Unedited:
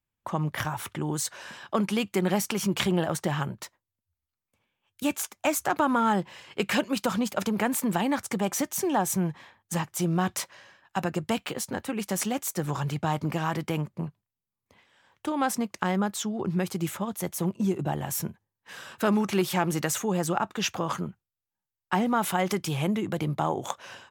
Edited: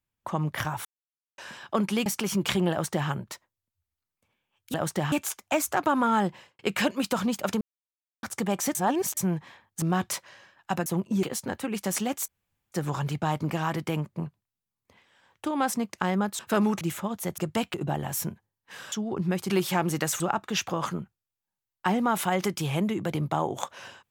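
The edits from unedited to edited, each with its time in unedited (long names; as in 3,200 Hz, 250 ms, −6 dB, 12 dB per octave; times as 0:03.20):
0:00.85–0:01.38: silence
0:02.06–0:02.37: remove
0:03.02–0:03.40: duplicate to 0:05.05
0:06.26–0:06.52: fade out and dull
0:07.54–0:08.16: silence
0:08.68–0:09.10: reverse
0:09.75–0:10.08: remove
0:11.12–0:11.48: swap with 0:17.35–0:17.72
0:12.53: splice in room tone 0.44 s
0:16.20–0:16.78: swap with 0:18.90–0:19.32
0:20.02–0:20.27: remove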